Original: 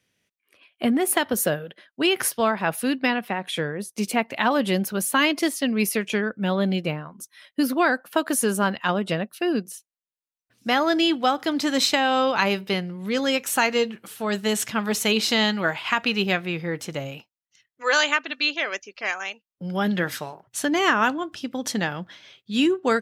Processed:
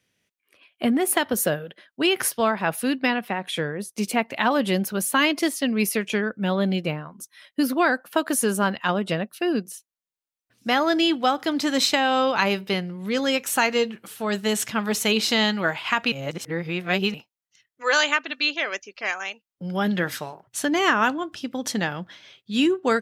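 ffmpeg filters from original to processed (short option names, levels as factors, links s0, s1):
-filter_complex "[0:a]asplit=3[s0][s1][s2];[s0]atrim=end=16.122[s3];[s1]atrim=start=16.118:end=17.142,asetpts=PTS-STARTPTS,areverse[s4];[s2]atrim=start=17.138[s5];[s3][s4]acrossfade=d=0.004:c1=hsin:c2=hsin[s6];[s6][s5]acrossfade=d=0.004:c1=hsin:c2=hsin"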